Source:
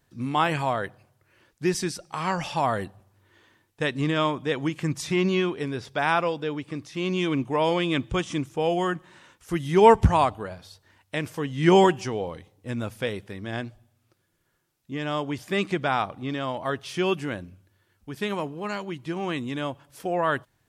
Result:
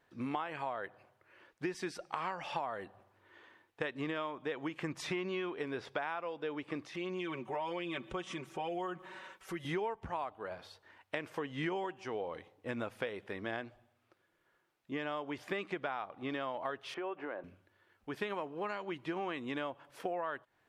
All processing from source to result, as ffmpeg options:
-filter_complex "[0:a]asettb=1/sr,asplit=3[a][b][c];[a]atrim=end=6.944[d];[b]atrim=start=6.94:end=9.65,asetpts=PTS-STARTPTS,afade=t=in:d=0.004:c=qsin,afade=t=out:st=2.706:d=0.004:c=qsin,highshelf=f=9k:g=6,aecho=1:1:5.3:0.88,atrim=end_sample=119511,acompressor=threshold=-37dB:ratio=2.5:attack=3.2:release=140:knee=1:detection=peak[e];[c]atrim=start=9.646[f];[d][e]acrossfade=d=0.004:c1=hsin:c2=qsin[g];[g][f]acrossfade=d=0.004:c1=qsin:c2=hsin,asettb=1/sr,asplit=3[h][i][j];[h]atrim=end=16.944[k];[i]atrim=start=16.94:end=17.44,asetpts=PTS-STARTPTS,afade=t=in:d=0.004:c=qsin,afade=t=out:st=0.496:d=0.004:c=qsin,highpass=620,lowpass=2.3k,tiltshelf=f=1.2k:g=9,acompressor=threshold=-34dB:ratio=10:attack=3.2:release=140:knee=1:detection=peak[l];[j]atrim=start=17.436[m];[k][l]acrossfade=d=0.004:c1=hsin:c2=qsin[n];[n][m]acrossfade=d=0.004:c1=qsin:c2=hsin,bass=f=250:g=-15,treble=f=4k:g=-15,acompressor=threshold=-35dB:ratio=20,volume=1.5dB"

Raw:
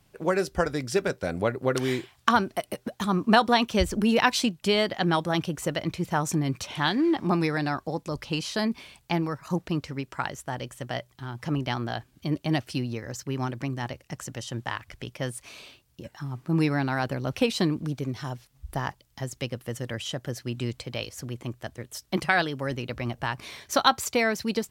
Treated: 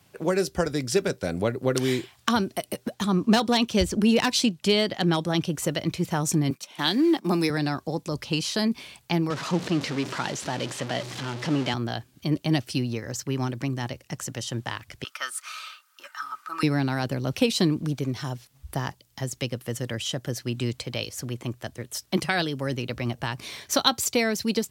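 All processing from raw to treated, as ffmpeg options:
-filter_complex "[0:a]asettb=1/sr,asplit=3[a][b][c];[a]atrim=end=2.944[d];[b]atrim=start=2.94:end=5.52,asetpts=PTS-STARTPTS,afade=t=in:d=0.004:c=qsin,afade=t=out:st=2.576:d=0.004:c=qsin,highshelf=f=11k:g=-8,asoftclip=type=hard:threshold=-14dB[e];[c]atrim=start=5.516[f];[d][e]acrossfade=d=0.004:c1=hsin:c2=qsin[g];[g][f]acrossfade=d=0.004:c1=qsin:c2=hsin,asettb=1/sr,asplit=3[h][i][j];[h]atrim=end=6.504[k];[i]atrim=start=6.5:end=7.5,asetpts=PTS-STARTPTS,afade=t=in:d=0.004:c=qsin,afade=t=out:st=0.996:d=0.004:c=qsin,agate=range=-16dB:threshold=-33dB:ratio=16:release=100:detection=peak,highpass=f=180:w=0.5412,highpass=f=180:w=1.3066,highshelf=f=7.8k:g=10.5[l];[j]atrim=start=7.496[m];[k][l]acrossfade=d=0.004:c1=hsin:c2=qsin[n];[n][m]acrossfade=d=0.004:c1=qsin:c2=hsin,asettb=1/sr,asplit=3[o][p][q];[o]atrim=end=9.304[r];[p]atrim=start=9.3:end=11.74,asetpts=PTS-STARTPTS,afade=t=in:d=0.004:c=qsin,afade=t=out:st=2.436:d=0.004:c=qsin,aeval=exprs='val(0)+0.5*0.0398*sgn(val(0))':c=same,highpass=180,lowpass=5.1k[s];[q]atrim=start=11.736[t];[r][s]acrossfade=d=0.004:c1=hsin:c2=qsin[u];[u][t]acrossfade=d=0.004:c1=qsin:c2=hsin,asettb=1/sr,asplit=3[v][w][x];[v]atrim=end=15.044[y];[w]atrim=start=15.04:end=16.63,asetpts=PTS-STARTPTS,afade=t=in:d=0.004:c=qsin,afade=t=out:st=1.586:d=0.004:c=qsin,highpass=f=1.3k:t=q:w=11,aecho=1:1:3.3:0.44,atrim=end_sample=70119[z];[x]atrim=start=16.626[aa];[y][z]acrossfade=d=0.004:c1=hsin:c2=qsin[ab];[ab][aa]acrossfade=d=0.004:c1=qsin:c2=hsin,highpass=84,equalizer=f=200:w=0.41:g=-2.5,acrossover=split=480|3000[ac][ad][ae];[ad]acompressor=threshold=-51dB:ratio=1.5[af];[ac][af][ae]amix=inputs=3:normalize=0,volume=5.5dB"

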